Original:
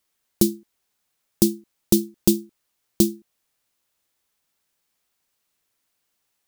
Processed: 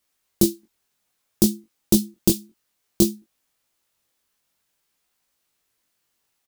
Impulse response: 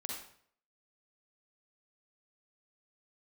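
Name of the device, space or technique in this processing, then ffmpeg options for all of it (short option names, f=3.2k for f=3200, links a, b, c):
double-tracked vocal: -filter_complex "[0:a]asplit=2[a][b];[b]adelay=22,volume=-11dB[c];[a][c]amix=inputs=2:normalize=0,flanger=delay=18:depth=4.7:speed=0.58,volume=4dB"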